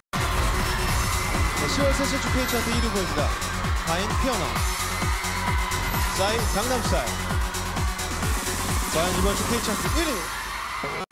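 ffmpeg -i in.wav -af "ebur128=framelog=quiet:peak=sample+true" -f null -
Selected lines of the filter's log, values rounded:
Integrated loudness:
  I:         -24.6 LUFS
  Threshold: -34.6 LUFS
Loudness range:
  LRA:         1.2 LU
  Threshold: -44.6 LUFS
  LRA low:   -25.0 LUFS
  LRA high:  -23.8 LUFS
Sample peak:
  Peak:      -11.1 dBFS
True peak:
  Peak:      -11.0 dBFS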